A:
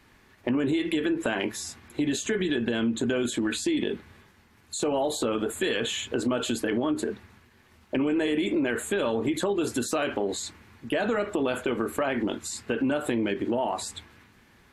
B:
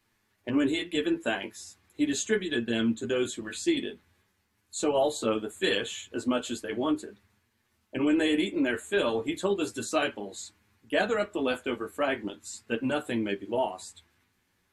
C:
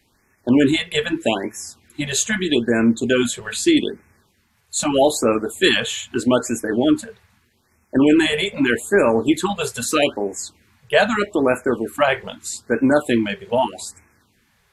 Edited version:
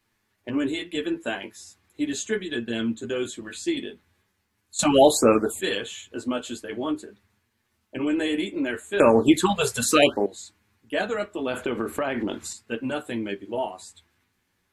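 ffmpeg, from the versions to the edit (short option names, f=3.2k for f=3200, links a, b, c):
-filter_complex "[2:a]asplit=2[a][b];[1:a]asplit=4[c][d][e][f];[c]atrim=end=4.792[g];[a]atrim=start=4.788:end=5.612[h];[d]atrim=start=5.608:end=9.002[i];[b]atrim=start=8.998:end=10.262[j];[e]atrim=start=10.258:end=11.472[k];[0:a]atrim=start=11.468:end=12.532[l];[f]atrim=start=12.528[m];[g][h]acrossfade=d=0.004:c1=hsin:c2=hsin[n];[n][i]acrossfade=d=0.004:c1=hsin:c2=hsin[o];[o][j]acrossfade=d=0.004:c1=hsin:c2=hsin[p];[p][k]acrossfade=d=0.004:c1=hsin:c2=hsin[q];[q][l]acrossfade=d=0.004:c1=hsin:c2=hsin[r];[r][m]acrossfade=d=0.004:c1=hsin:c2=hsin"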